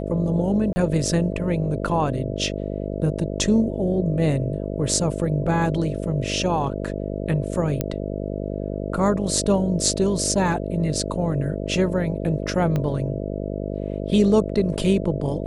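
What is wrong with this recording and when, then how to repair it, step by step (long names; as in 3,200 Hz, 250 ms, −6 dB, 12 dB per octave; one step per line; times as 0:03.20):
mains buzz 50 Hz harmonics 13 −28 dBFS
0:00.73–0:00.76: drop-out 30 ms
0:07.81: click −9 dBFS
0:12.76: click −13 dBFS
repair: click removal
hum removal 50 Hz, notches 13
repair the gap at 0:00.73, 30 ms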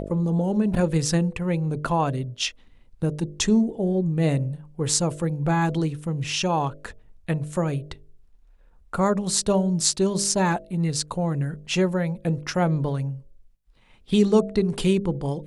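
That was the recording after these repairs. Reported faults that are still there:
0:12.76: click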